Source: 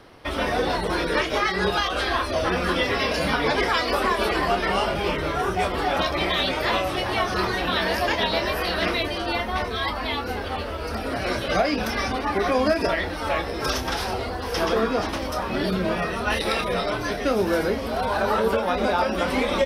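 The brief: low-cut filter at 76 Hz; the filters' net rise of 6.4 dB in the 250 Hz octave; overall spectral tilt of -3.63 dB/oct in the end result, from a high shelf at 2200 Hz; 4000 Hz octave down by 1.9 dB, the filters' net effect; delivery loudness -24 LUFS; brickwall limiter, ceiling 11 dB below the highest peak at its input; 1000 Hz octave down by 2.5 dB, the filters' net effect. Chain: HPF 76 Hz; bell 250 Hz +8.5 dB; bell 1000 Hz -4.5 dB; high shelf 2200 Hz +3.5 dB; bell 4000 Hz -5.5 dB; gain +3 dB; limiter -15.5 dBFS

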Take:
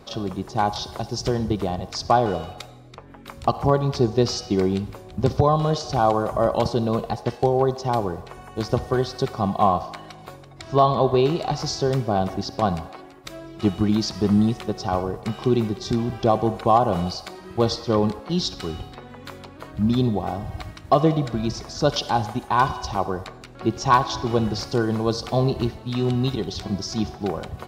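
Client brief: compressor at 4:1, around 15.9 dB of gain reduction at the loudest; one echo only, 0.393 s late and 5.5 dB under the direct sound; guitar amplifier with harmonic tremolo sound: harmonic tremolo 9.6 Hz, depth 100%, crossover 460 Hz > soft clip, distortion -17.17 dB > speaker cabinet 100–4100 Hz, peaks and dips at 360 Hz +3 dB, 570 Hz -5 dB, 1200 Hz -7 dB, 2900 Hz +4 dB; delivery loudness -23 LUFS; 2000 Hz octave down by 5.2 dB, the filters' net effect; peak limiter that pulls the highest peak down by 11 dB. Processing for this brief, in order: bell 2000 Hz -6.5 dB; compressor 4:1, threshold -33 dBFS; limiter -27.5 dBFS; echo 0.393 s -5.5 dB; harmonic tremolo 9.6 Hz, depth 100%, crossover 460 Hz; soft clip -33 dBFS; speaker cabinet 100–4100 Hz, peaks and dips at 360 Hz +3 dB, 570 Hz -5 dB, 1200 Hz -7 dB, 2900 Hz +4 dB; gain +22 dB

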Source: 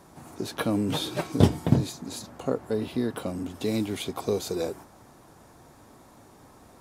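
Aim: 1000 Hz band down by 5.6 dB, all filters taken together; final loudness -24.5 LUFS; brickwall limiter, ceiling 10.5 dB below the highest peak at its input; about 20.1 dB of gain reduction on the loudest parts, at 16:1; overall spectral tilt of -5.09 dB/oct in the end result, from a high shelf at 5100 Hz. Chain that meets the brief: bell 1000 Hz -7.5 dB; high shelf 5100 Hz -5.5 dB; compressor 16:1, threshold -33 dBFS; gain +17.5 dB; limiter -14 dBFS

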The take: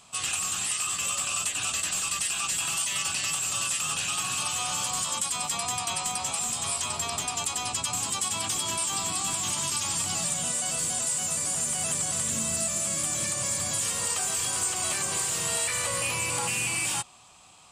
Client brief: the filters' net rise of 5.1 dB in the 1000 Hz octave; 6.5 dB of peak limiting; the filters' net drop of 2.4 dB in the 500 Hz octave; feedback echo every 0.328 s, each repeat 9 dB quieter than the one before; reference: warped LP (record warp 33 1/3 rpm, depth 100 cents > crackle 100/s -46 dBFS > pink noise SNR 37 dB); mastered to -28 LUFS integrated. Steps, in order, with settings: bell 500 Hz -7 dB; bell 1000 Hz +8 dB; limiter -23 dBFS; feedback echo 0.328 s, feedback 35%, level -9 dB; record warp 33 1/3 rpm, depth 100 cents; crackle 100/s -46 dBFS; pink noise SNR 37 dB; gain +0.5 dB

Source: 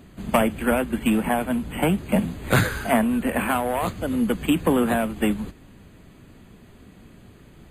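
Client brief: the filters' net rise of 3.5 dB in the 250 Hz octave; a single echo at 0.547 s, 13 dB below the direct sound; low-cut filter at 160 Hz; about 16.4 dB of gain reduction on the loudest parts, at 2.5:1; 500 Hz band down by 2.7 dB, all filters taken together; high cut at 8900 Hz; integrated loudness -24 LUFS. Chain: HPF 160 Hz; LPF 8900 Hz; bell 250 Hz +6 dB; bell 500 Hz -5 dB; compressor 2.5:1, threshold -40 dBFS; echo 0.547 s -13 dB; gain +12.5 dB

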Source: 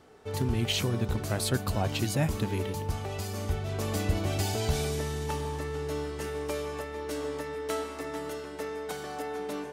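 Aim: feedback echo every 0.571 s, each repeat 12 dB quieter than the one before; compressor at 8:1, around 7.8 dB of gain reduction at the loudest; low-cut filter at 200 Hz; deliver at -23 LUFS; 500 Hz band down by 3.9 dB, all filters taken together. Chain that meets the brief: HPF 200 Hz; bell 500 Hz -4.5 dB; compressor 8:1, threshold -34 dBFS; feedback echo 0.571 s, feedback 25%, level -12 dB; gain +15.5 dB

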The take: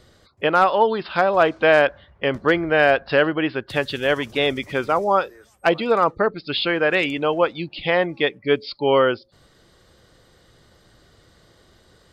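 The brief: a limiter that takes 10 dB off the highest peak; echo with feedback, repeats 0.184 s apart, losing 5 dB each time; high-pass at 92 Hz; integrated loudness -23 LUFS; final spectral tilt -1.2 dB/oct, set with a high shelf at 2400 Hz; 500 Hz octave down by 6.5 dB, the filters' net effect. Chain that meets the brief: HPF 92 Hz; bell 500 Hz -8.5 dB; high shelf 2400 Hz +8.5 dB; limiter -10.5 dBFS; feedback echo 0.184 s, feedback 56%, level -5 dB; gain -1 dB

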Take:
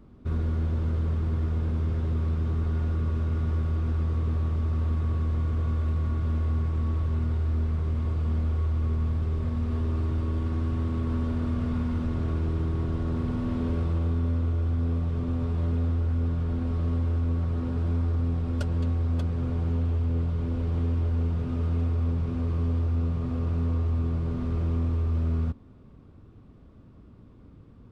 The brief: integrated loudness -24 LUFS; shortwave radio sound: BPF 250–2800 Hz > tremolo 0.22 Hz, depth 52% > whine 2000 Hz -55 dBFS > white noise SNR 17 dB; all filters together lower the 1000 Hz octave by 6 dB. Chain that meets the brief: BPF 250–2800 Hz; bell 1000 Hz -7.5 dB; tremolo 0.22 Hz, depth 52%; whine 2000 Hz -55 dBFS; white noise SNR 17 dB; gain +17 dB

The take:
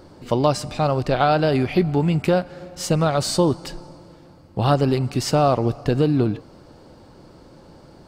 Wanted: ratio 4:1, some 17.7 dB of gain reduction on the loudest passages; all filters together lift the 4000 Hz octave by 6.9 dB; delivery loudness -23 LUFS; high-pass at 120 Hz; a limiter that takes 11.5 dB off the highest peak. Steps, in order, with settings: HPF 120 Hz; bell 4000 Hz +8.5 dB; compressor 4:1, threshold -35 dBFS; gain +18 dB; limiter -12 dBFS

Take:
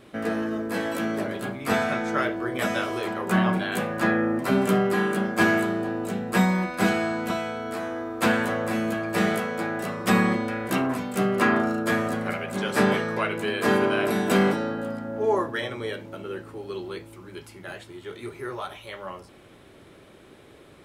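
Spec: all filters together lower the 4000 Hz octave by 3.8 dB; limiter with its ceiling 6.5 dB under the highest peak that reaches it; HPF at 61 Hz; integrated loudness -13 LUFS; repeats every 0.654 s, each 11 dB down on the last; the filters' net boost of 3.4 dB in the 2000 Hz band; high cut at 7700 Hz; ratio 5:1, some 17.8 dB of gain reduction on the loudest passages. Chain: HPF 61 Hz; LPF 7700 Hz; bell 2000 Hz +6 dB; bell 4000 Hz -8 dB; compressor 5:1, threshold -36 dBFS; limiter -28.5 dBFS; feedback echo 0.654 s, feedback 28%, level -11 dB; gain +25.5 dB

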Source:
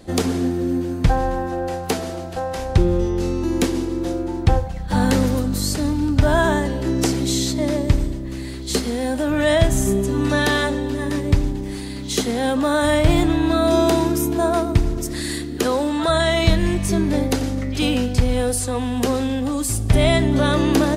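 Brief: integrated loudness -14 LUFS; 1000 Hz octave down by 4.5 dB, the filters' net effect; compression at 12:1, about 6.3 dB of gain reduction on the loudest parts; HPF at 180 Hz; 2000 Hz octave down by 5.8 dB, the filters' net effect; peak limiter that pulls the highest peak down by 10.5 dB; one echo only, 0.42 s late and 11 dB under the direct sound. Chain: HPF 180 Hz; bell 1000 Hz -5 dB; bell 2000 Hz -5.5 dB; compressor 12:1, threshold -21 dBFS; limiter -19.5 dBFS; echo 0.42 s -11 dB; gain +13.5 dB

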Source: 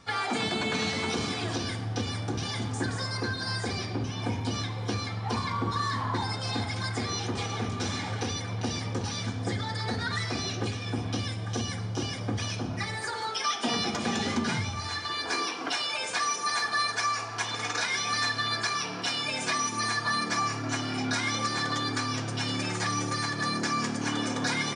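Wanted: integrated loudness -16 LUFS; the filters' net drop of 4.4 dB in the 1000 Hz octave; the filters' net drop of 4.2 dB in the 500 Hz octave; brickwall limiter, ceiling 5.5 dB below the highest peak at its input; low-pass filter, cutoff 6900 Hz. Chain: LPF 6900 Hz; bell 500 Hz -4.5 dB; bell 1000 Hz -4.5 dB; gain +16 dB; limiter -6.5 dBFS

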